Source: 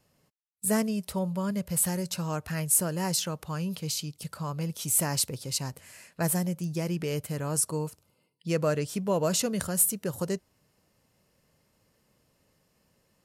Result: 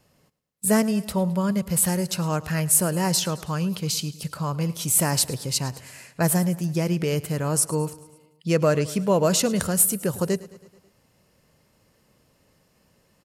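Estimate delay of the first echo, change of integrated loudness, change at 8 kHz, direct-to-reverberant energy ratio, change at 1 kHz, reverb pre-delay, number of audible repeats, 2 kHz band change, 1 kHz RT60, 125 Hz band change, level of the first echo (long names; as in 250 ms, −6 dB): 108 ms, +5.5 dB, +5.0 dB, no reverb audible, +6.5 dB, no reverb audible, 4, +6.5 dB, no reverb audible, +6.5 dB, −19.0 dB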